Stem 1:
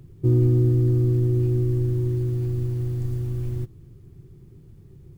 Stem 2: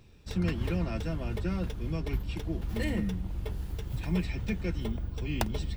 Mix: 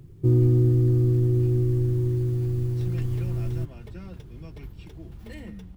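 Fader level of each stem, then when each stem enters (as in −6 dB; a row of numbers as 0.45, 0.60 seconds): −0.5, −9.5 decibels; 0.00, 2.50 seconds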